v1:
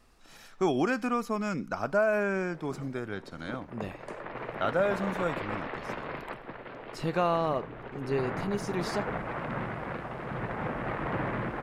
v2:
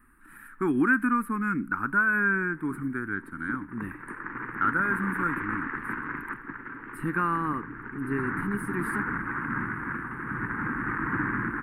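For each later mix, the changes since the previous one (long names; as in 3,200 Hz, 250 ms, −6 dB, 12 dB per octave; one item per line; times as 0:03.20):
master: add drawn EQ curve 160 Hz 0 dB, 300 Hz +8 dB, 650 Hz −27 dB, 920 Hz −1 dB, 1,600 Hz +12 dB, 3,300 Hz −18 dB, 6,200 Hz −30 dB, 9,000 Hz +6 dB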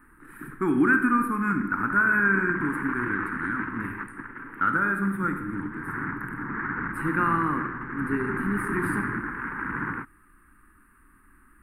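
background: entry −2.30 s
reverb: on, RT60 1.1 s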